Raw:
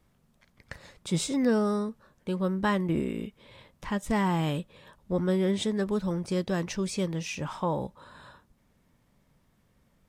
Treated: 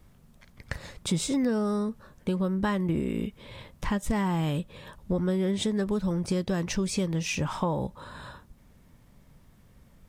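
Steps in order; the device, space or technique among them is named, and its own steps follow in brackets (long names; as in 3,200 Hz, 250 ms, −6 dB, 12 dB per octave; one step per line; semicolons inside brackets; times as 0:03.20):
ASMR close-microphone chain (low-shelf EQ 130 Hz +8 dB; downward compressor 4 to 1, threshold −31 dBFS, peak gain reduction 10.5 dB; high-shelf EQ 9,200 Hz +3.5 dB)
level +6 dB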